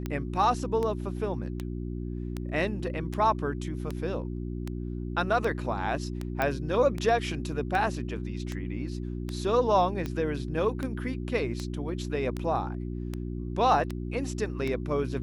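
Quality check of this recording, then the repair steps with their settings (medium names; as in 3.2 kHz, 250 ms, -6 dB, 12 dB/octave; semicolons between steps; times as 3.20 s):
hum 60 Hz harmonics 6 -34 dBFS
tick 78 rpm -19 dBFS
6.42 s: pop -14 dBFS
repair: de-click; de-hum 60 Hz, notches 6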